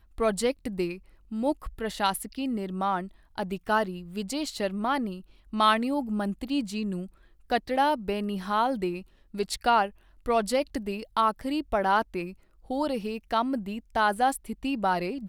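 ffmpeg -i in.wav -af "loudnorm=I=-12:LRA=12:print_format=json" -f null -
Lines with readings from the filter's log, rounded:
"input_i" : "-28.5",
"input_tp" : "-8.8",
"input_lra" : "1.7",
"input_thresh" : "-38.8",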